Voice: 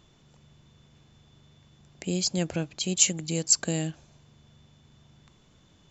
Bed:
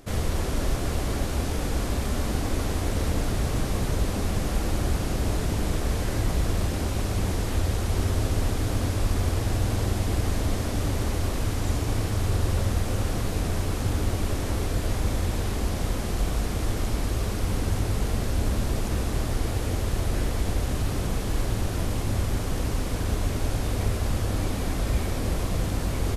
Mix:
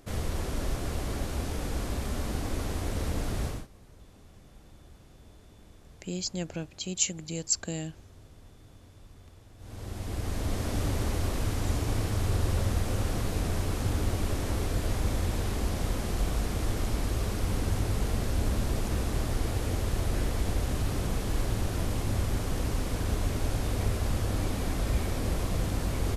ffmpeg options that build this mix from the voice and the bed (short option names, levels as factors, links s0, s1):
-filter_complex "[0:a]adelay=4000,volume=0.501[s0];[1:a]volume=9.44,afade=t=out:st=3.45:d=0.22:silence=0.0749894,afade=t=in:st=9.57:d=1.17:silence=0.0562341[s1];[s0][s1]amix=inputs=2:normalize=0"